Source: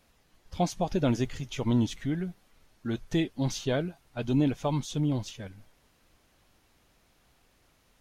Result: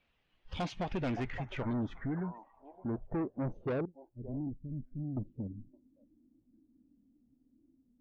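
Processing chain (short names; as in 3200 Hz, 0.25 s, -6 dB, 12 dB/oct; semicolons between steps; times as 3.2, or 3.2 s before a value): 3.85–5.17 passive tone stack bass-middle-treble 10-0-1; delay with a stepping band-pass 0.567 s, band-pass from 860 Hz, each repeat 1.4 oct, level -10 dB; in parallel at +3 dB: compressor 6:1, threshold -41 dBFS, peak gain reduction 19 dB; on the sum: low-pass sweep 2900 Hz -> 280 Hz, 0.65–4.58; soft clip -25.5 dBFS, distortion -9 dB; spectral noise reduction 15 dB; gain -4.5 dB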